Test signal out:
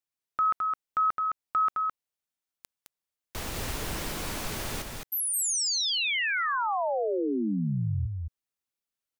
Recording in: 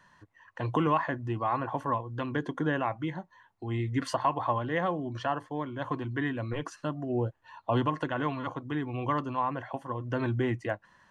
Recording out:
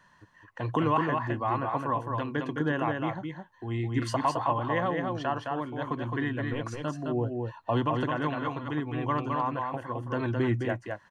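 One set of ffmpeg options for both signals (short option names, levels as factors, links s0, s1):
-af "aecho=1:1:213:0.631"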